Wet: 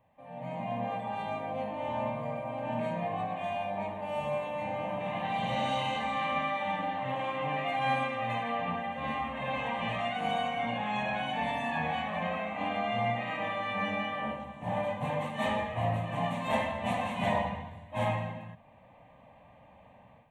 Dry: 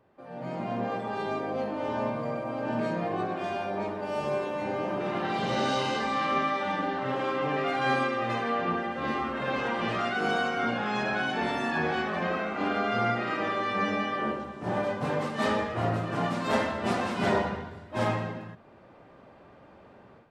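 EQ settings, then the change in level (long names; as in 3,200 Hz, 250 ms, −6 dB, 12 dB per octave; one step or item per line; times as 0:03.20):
phaser with its sweep stopped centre 1,400 Hz, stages 6
0.0 dB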